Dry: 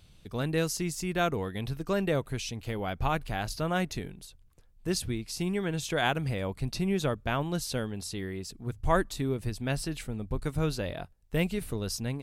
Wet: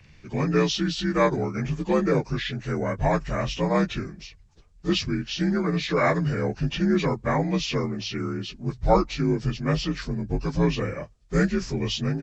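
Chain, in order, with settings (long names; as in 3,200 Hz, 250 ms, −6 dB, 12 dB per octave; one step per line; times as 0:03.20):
partials spread apart or drawn together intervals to 83%
pitch-shifted copies added −3 semitones −16 dB
level +7.5 dB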